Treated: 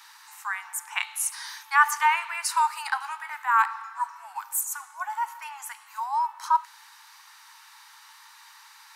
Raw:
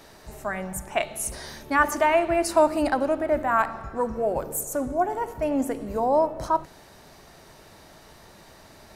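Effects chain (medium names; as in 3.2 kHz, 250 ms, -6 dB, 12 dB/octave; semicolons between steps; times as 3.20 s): steep high-pass 860 Hz 96 dB/octave; 2.94–3.34 s: doubling 18 ms -8 dB; trim +2.5 dB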